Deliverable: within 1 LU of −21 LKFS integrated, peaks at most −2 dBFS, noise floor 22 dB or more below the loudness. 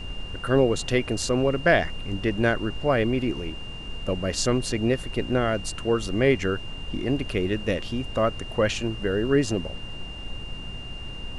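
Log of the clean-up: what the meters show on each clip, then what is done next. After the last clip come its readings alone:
interfering tone 2,800 Hz; level of the tone −39 dBFS; background noise floor −36 dBFS; target noise floor −47 dBFS; integrated loudness −25.0 LKFS; sample peak −7.5 dBFS; target loudness −21.0 LKFS
→ notch filter 2,800 Hz, Q 30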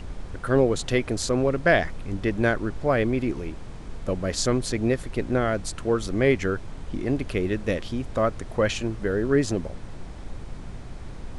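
interfering tone none found; background noise floor −38 dBFS; target noise floor −48 dBFS
→ noise reduction from a noise print 10 dB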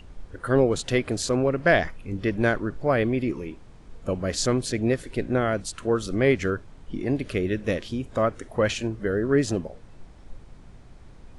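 background noise floor −47 dBFS; target noise floor −48 dBFS
→ noise reduction from a noise print 6 dB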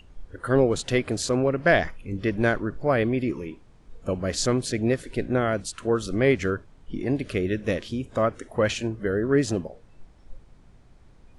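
background noise floor −53 dBFS; integrated loudness −25.5 LKFS; sample peak −8.0 dBFS; target loudness −21.0 LKFS
→ level +4.5 dB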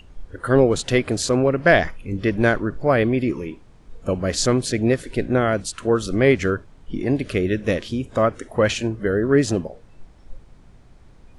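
integrated loudness −21.0 LKFS; sample peak −3.5 dBFS; background noise floor −48 dBFS

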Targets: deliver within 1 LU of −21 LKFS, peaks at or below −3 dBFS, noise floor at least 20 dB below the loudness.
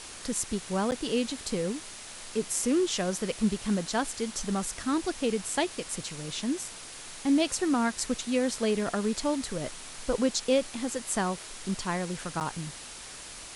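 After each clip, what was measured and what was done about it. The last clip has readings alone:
number of dropouts 2; longest dropout 9.1 ms; background noise floor −44 dBFS; target noise floor −50 dBFS; integrated loudness −30.0 LKFS; sample peak −13.0 dBFS; target loudness −21.0 LKFS
→ repair the gap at 0:00.91/0:12.40, 9.1 ms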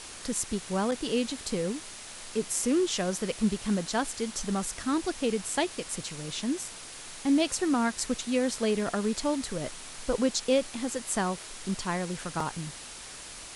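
number of dropouts 0; background noise floor −44 dBFS; target noise floor −50 dBFS
→ noise reduction from a noise print 6 dB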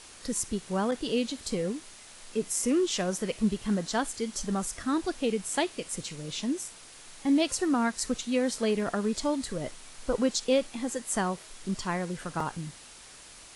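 background noise floor −50 dBFS; integrated loudness −30.0 LKFS; sample peak −13.0 dBFS; target loudness −21.0 LKFS
→ level +9 dB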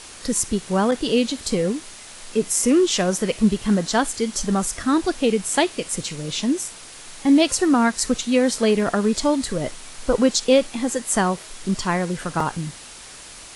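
integrated loudness −21.0 LKFS; sample peak −4.0 dBFS; background noise floor −41 dBFS

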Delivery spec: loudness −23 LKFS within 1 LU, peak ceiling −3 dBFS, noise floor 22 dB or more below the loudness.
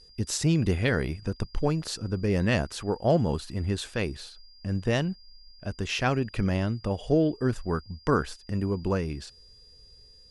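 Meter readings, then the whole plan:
interfering tone 4,800 Hz; level of the tone −53 dBFS; integrated loudness −28.0 LKFS; sample peak −11.5 dBFS; target loudness −23.0 LKFS
→ notch filter 4,800 Hz, Q 30
level +5 dB

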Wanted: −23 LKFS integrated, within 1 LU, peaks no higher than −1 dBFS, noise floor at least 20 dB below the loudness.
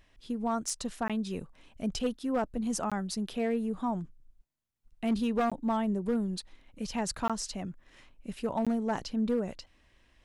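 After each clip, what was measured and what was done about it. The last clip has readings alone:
share of clipped samples 0.7%; peaks flattened at −22.5 dBFS; number of dropouts 5; longest dropout 16 ms; integrated loudness −32.5 LKFS; sample peak −22.5 dBFS; target loudness −23.0 LKFS
→ clipped peaks rebuilt −22.5 dBFS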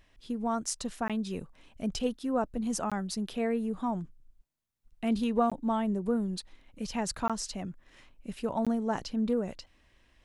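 share of clipped samples 0.0%; number of dropouts 5; longest dropout 16 ms
→ repair the gap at 0:01.08/0:02.90/0:05.50/0:07.28/0:08.65, 16 ms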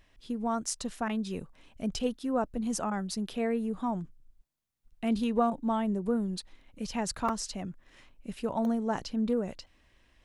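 number of dropouts 0; integrated loudness −32.5 LKFS; sample peak −14.5 dBFS; target loudness −23.0 LKFS
→ level +9.5 dB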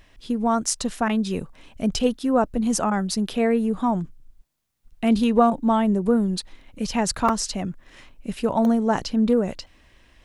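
integrated loudness −23.0 LKFS; sample peak −5.0 dBFS; background noise floor −57 dBFS

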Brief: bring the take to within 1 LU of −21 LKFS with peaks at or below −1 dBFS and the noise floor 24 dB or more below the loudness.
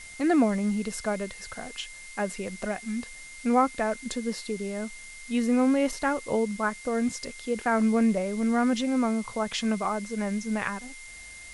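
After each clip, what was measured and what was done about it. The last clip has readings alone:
interfering tone 2,100 Hz; level of the tone −44 dBFS; background noise floor −45 dBFS; target noise floor −52 dBFS; integrated loudness −28.0 LKFS; sample peak −11.5 dBFS; target loudness −21.0 LKFS
→ notch filter 2,100 Hz, Q 30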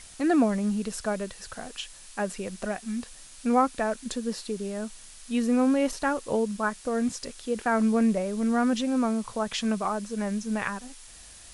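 interfering tone none found; background noise floor −48 dBFS; target noise floor −52 dBFS
→ noise reduction from a noise print 6 dB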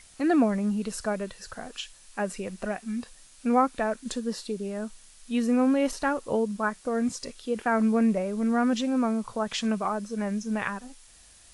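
background noise floor −54 dBFS; integrated loudness −28.0 LKFS; sample peak −12.0 dBFS; target loudness −21.0 LKFS
→ level +7 dB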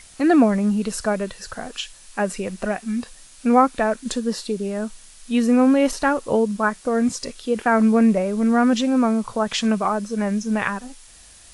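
integrated loudness −21.0 LKFS; sample peak −5.0 dBFS; background noise floor −47 dBFS

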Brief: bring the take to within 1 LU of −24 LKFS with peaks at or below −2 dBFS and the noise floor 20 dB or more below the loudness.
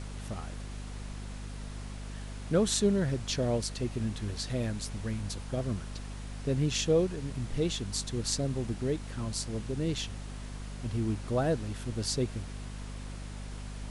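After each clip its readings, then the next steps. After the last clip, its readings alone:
mains hum 50 Hz; hum harmonics up to 250 Hz; level of the hum −38 dBFS; background noise floor −41 dBFS; target noise floor −54 dBFS; integrated loudness −33.5 LKFS; sample peak −12.0 dBFS; target loudness −24.0 LKFS
→ mains-hum notches 50/100/150/200/250 Hz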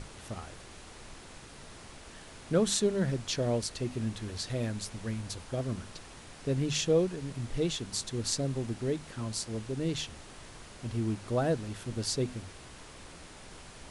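mains hum none found; background noise floor −50 dBFS; target noise floor −53 dBFS
→ noise reduction from a noise print 6 dB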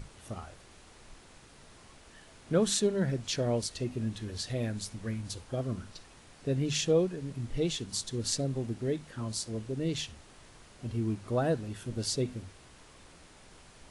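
background noise floor −56 dBFS; integrated loudness −33.0 LKFS; sample peak −12.0 dBFS; target loudness −24.0 LKFS
→ level +9 dB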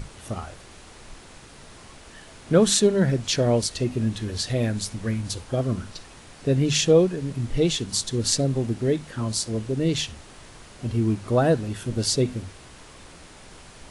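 integrated loudness −24.0 LKFS; sample peak −3.0 dBFS; background noise floor −47 dBFS

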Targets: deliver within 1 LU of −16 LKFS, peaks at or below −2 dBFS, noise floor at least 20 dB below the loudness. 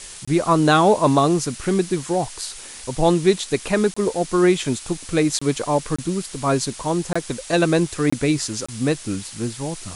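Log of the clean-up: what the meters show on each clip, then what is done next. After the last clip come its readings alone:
number of dropouts 7; longest dropout 25 ms; background noise floor −38 dBFS; target noise floor −41 dBFS; integrated loudness −20.5 LKFS; sample peak −4.5 dBFS; target loudness −16.0 LKFS
→ repair the gap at 0:00.25/0:03.94/0:05.39/0:05.96/0:07.13/0:08.10/0:08.66, 25 ms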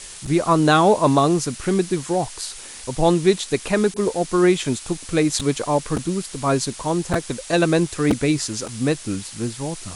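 number of dropouts 0; background noise floor −38 dBFS; target noise floor −41 dBFS
→ noise reduction from a noise print 6 dB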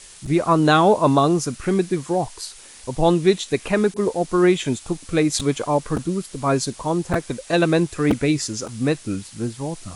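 background noise floor −44 dBFS; integrated loudness −20.5 LKFS; sample peak −4.5 dBFS; target loudness −16.0 LKFS
→ level +4.5 dB
brickwall limiter −2 dBFS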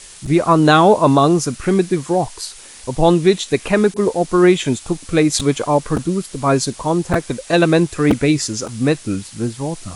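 integrated loudness −16.5 LKFS; sample peak −2.0 dBFS; background noise floor −39 dBFS

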